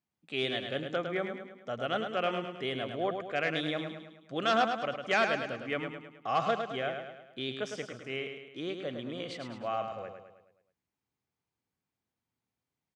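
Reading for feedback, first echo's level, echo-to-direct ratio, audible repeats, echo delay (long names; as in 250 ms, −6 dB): 50%, −6.5 dB, −5.5 dB, 5, 106 ms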